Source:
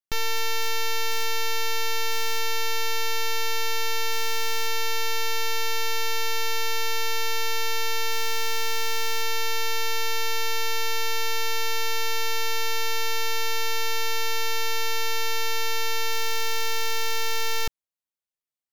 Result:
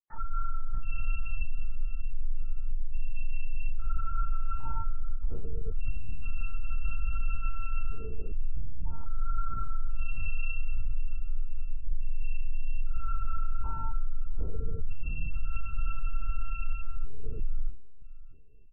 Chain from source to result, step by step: phase shifter stages 4, 0.11 Hz, lowest notch 110–1700 Hz; feedback comb 270 Hz, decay 0.51 s, harmonics all, mix 70%; spectral gate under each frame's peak -30 dB strong; on a send: feedback delay 629 ms, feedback 35%, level -18 dB; on the sum: LPC vocoder at 8 kHz whisper; trim -2 dB

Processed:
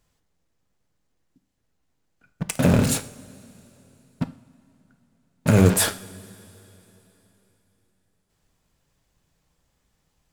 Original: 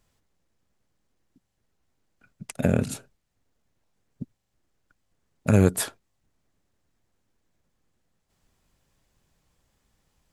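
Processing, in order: de-hum 101.8 Hz, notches 35; in parallel at -9 dB: fuzz box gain 45 dB, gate -42 dBFS; on the sum: two-slope reverb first 0.43 s, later 3.5 s, from -18 dB, DRR 11 dB

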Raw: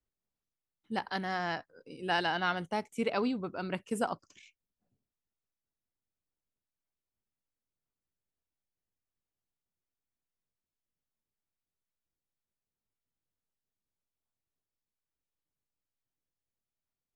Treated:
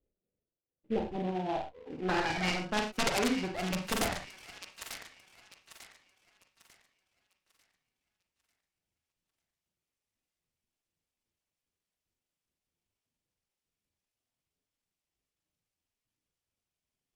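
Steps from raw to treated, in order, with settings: comb filter that takes the minimum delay 0.37 ms; reverb removal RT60 1.6 s; in parallel at 0 dB: compression 6:1, threshold -44 dBFS, peak gain reduction 16 dB; on the sum: integer overflow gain 23.5 dB; low-pass sweep 500 Hz -> 7.3 kHz, 1.25–3.39 s; feedback echo behind a high-pass 895 ms, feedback 34%, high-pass 1.7 kHz, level -8 dB; on a send at -2 dB: reverberation, pre-delay 38 ms; on the sum: delay time shaken by noise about 2 kHz, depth 0.038 ms

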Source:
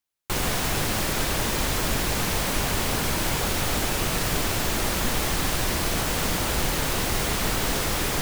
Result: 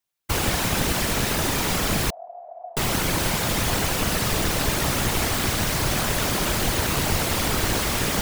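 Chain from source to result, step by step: whisper effect; 2.10–2.77 s: Butterworth band-pass 690 Hz, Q 7.6; trim +2 dB

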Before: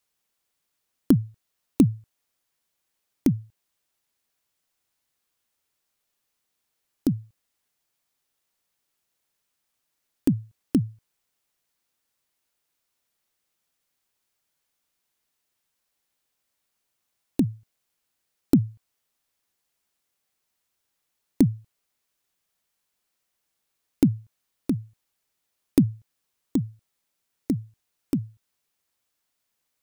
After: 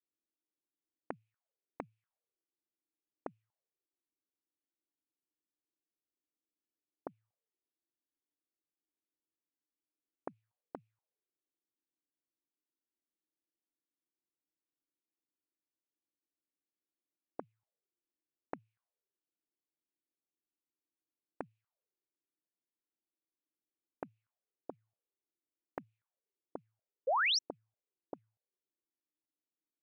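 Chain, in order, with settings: auto-wah 310–2500 Hz, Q 5.5, up, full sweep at -21 dBFS; painted sound rise, 27.07–27.39 s, 470–6100 Hz -28 dBFS; trim -2 dB

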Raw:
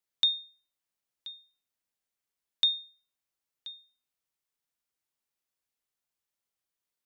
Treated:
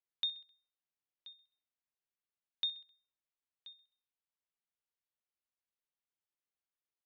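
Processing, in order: low-pass 4.1 kHz 24 dB/octave; feedback delay 65 ms, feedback 54%, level -20 dB; trim -9 dB

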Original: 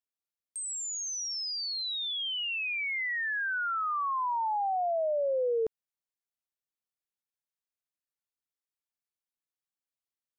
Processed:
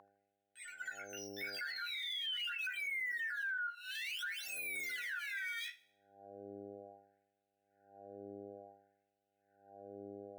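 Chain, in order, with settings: local Wiener filter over 41 samples; in parallel at 0 dB: decimation with a swept rate 18×, swing 160% 0.59 Hz; on the sum: reverberation RT60 0.15 s, pre-delay 3 ms, DRR -0.5 dB; flange 0.44 Hz, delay 8.9 ms, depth 8.2 ms, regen +39%; brick-wall FIR band-stop 150–1400 Hz; high-order bell 680 Hz +14.5 dB 2.5 oct; mains buzz 100 Hz, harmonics 8, -54 dBFS -9 dB/octave; compression 12:1, threshold -41 dBFS, peak gain reduction 24.5 dB; LFO high-pass sine 0.57 Hz 370–3100 Hz; peak limiter -46.5 dBFS, peak gain reduction 17 dB; thinning echo 78 ms, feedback 47%, high-pass 1.1 kHz, level -20 dB; trim +12 dB

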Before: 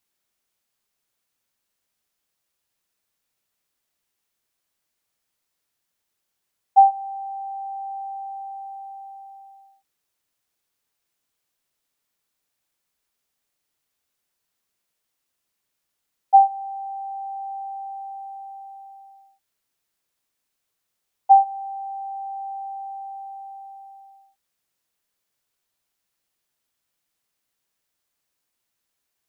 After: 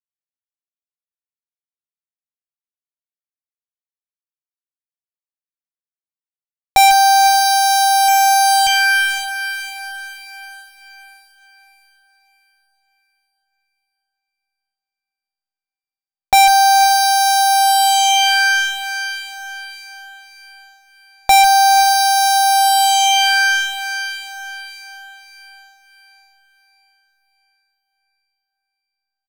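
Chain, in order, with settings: local Wiener filter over 25 samples; 8.08–8.67 s: waveshaping leveller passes 1; fuzz box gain 39 dB, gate -43 dBFS; Chebyshev shaper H 8 -12 dB, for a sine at -11 dBFS; doubling 16 ms -12 dB; echo that smears into a reverb 538 ms, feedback 45%, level -9.5 dB; trim +7.5 dB

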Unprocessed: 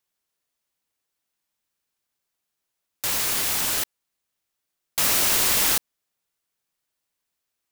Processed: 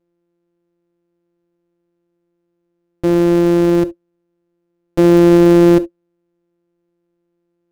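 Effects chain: sorted samples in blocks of 256 samples; tilt EQ -2 dB/octave; small resonant body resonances 340/540 Hz, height 17 dB, ringing for 80 ms; on a send: reverberation, pre-delay 17 ms, DRR 15 dB

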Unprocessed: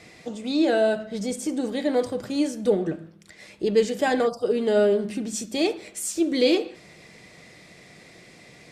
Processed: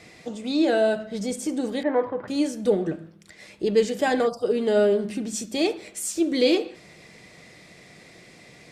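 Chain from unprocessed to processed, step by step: 1.83–2.28 s: cabinet simulation 140–2200 Hz, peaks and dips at 220 Hz -7 dB, 970 Hz +10 dB, 1.8 kHz +4 dB

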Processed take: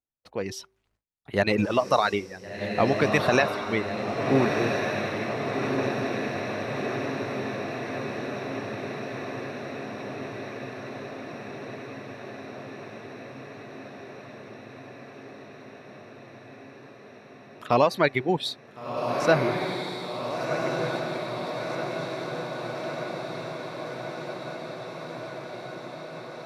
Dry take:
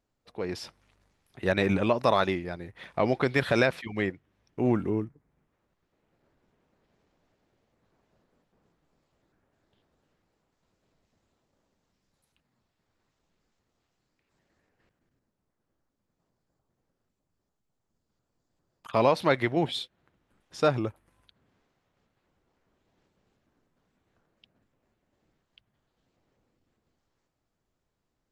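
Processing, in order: de-hum 360.3 Hz, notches 3; gate with hold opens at -54 dBFS; reverb removal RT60 1.8 s; tape speed +7%; echo that smears into a reverb 1436 ms, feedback 75%, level -4 dB; trim +3 dB

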